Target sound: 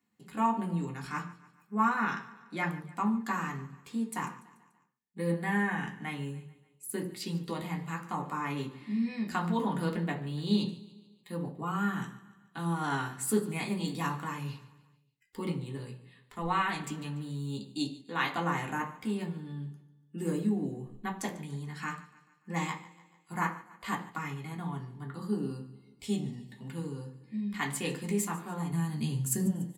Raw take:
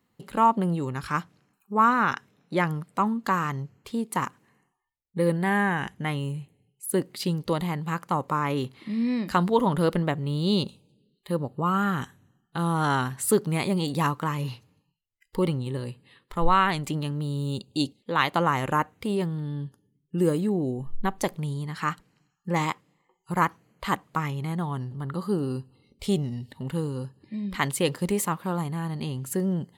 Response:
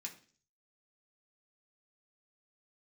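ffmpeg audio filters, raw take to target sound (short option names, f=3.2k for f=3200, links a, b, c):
-filter_complex "[0:a]asettb=1/sr,asplit=3[a][b][c];[a]atrim=end=28.714[d];[b]atrim=start=28.71:end=29.46,asetpts=PTS-STARTPTS,afade=t=in:d=0.004:c=qsin,afade=t=out:st=0.746:d=0.004:c=qsin,bass=f=250:g=11,treble=f=4k:g=10[e];[c]atrim=start=29.456[f];[d][e]acrossfade=d=0.004:c1=hsin:c2=qsin[g];[g][f]acrossfade=d=0.004:c1=qsin:c2=hsin,aecho=1:1:145|290|435|580:0.112|0.0595|0.0315|0.0167[h];[1:a]atrim=start_sample=2205,afade=t=out:st=0.22:d=0.01,atrim=end_sample=10143[i];[h][i]afir=irnorm=-1:irlink=0,volume=-3dB"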